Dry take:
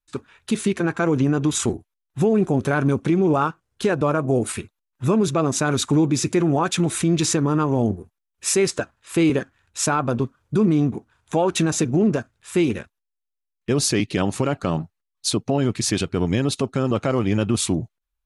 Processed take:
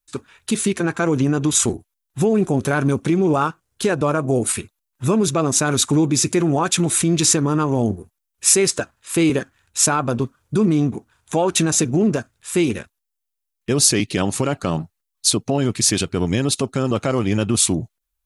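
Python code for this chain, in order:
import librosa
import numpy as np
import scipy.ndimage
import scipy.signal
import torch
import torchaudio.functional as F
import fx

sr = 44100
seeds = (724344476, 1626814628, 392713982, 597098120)

y = fx.high_shelf(x, sr, hz=5600.0, db=11.0)
y = F.gain(torch.from_numpy(y), 1.0).numpy()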